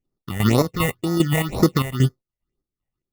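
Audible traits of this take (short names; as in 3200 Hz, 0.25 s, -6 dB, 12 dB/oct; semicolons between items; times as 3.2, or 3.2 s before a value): aliases and images of a low sample rate 1600 Hz, jitter 0%; phasing stages 6, 2 Hz, lowest notch 320–2800 Hz; chopped level 2.5 Hz, depth 65%, duty 55%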